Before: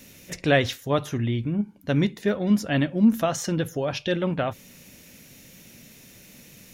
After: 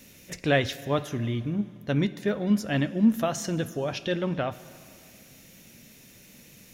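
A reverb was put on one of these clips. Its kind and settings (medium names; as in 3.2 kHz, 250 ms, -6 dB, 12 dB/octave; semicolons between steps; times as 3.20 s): plate-style reverb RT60 2.4 s, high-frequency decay 0.95×, DRR 15 dB; trim -3 dB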